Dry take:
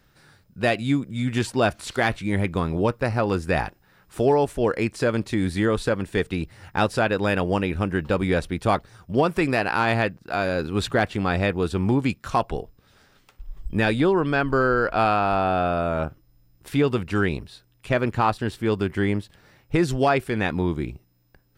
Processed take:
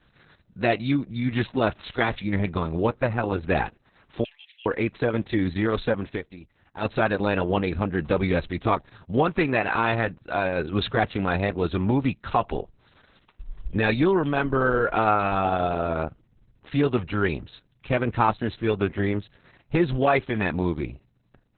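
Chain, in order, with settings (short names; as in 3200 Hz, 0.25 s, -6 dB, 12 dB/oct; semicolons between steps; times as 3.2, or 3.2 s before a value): 4.24–4.66 Chebyshev high-pass 2200 Hz, order 4; 6.14–6.86 dip -15.5 dB, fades 0.32 s exponential; Opus 6 kbps 48000 Hz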